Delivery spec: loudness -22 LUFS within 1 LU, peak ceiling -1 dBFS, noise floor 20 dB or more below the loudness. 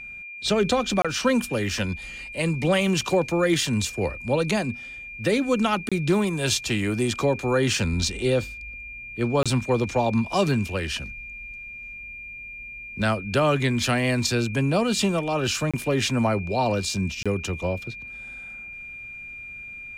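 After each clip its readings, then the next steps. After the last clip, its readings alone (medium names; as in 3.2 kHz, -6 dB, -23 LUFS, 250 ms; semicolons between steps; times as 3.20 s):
dropouts 5; longest dropout 26 ms; steady tone 2.4 kHz; tone level -36 dBFS; loudness -24.0 LUFS; peak level -10.5 dBFS; loudness target -22.0 LUFS
-> interpolate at 1.02/5.89/9.43/15.71/17.23 s, 26 ms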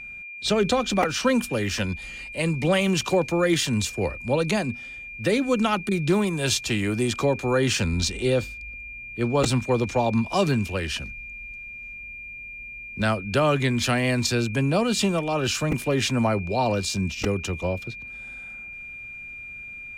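dropouts 0; steady tone 2.4 kHz; tone level -36 dBFS
-> band-stop 2.4 kHz, Q 30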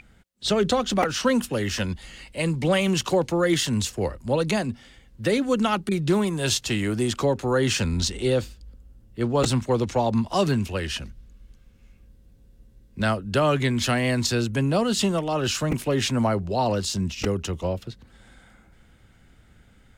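steady tone not found; loudness -24.0 LUFS; peak level -8.5 dBFS; loudness target -22.0 LUFS
-> trim +2 dB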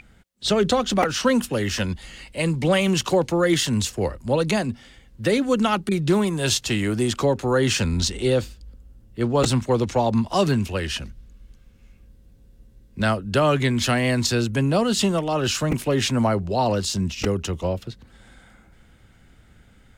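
loudness -22.0 LUFS; peak level -6.5 dBFS; noise floor -53 dBFS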